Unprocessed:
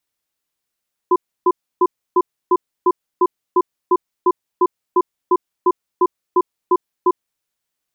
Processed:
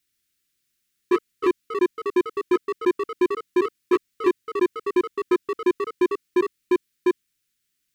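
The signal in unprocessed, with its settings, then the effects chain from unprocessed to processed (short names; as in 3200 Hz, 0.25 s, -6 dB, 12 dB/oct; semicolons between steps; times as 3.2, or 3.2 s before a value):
cadence 362 Hz, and 1010 Hz, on 0.05 s, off 0.30 s, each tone -12.5 dBFS 6.17 s
in parallel at -4 dB: overloaded stage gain 14.5 dB; on the sum: echoes that change speed 0.132 s, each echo +2 st, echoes 2, each echo -6 dB; Butterworth band-stop 750 Hz, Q 0.61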